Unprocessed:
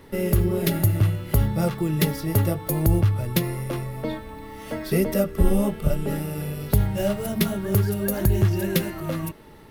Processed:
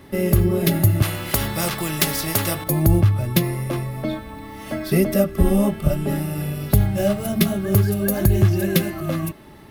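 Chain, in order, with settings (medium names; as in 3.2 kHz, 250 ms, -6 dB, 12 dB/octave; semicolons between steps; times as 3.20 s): comb of notches 470 Hz; 1.02–2.64 s: spectrum-flattening compressor 2:1; trim +4.5 dB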